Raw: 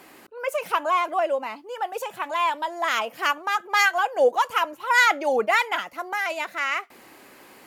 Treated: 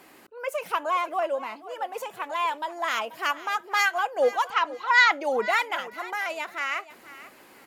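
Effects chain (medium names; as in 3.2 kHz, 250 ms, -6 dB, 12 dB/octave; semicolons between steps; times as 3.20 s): 4.50–5.12 s: cabinet simulation 120–6200 Hz, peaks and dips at 560 Hz -8 dB, 1.1 kHz +5 dB, 1.9 kHz +5 dB, 4.1 kHz +7 dB; on a send: feedback delay 485 ms, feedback 23%, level -16.5 dB; on the sum: trim -3.5 dB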